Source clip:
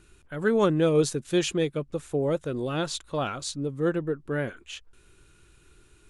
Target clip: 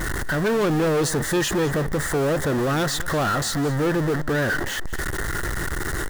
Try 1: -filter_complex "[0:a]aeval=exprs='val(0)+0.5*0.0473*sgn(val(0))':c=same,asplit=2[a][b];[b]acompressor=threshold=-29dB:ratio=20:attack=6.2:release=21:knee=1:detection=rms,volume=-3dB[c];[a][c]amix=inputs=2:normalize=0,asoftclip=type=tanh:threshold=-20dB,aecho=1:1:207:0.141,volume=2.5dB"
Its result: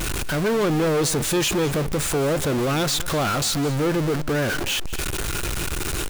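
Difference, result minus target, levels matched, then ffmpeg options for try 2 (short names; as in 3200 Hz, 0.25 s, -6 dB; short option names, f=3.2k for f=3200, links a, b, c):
2000 Hz band -3.0 dB
-filter_complex "[0:a]aeval=exprs='val(0)+0.5*0.0473*sgn(val(0))':c=same,asplit=2[a][b];[b]acompressor=threshold=-29dB:ratio=20:attack=6.2:release=21:knee=1:detection=rms,lowpass=f=1.9k:t=q:w=9.3,volume=-3dB[c];[a][c]amix=inputs=2:normalize=0,asoftclip=type=tanh:threshold=-20dB,aecho=1:1:207:0.141,volume=2.5dB"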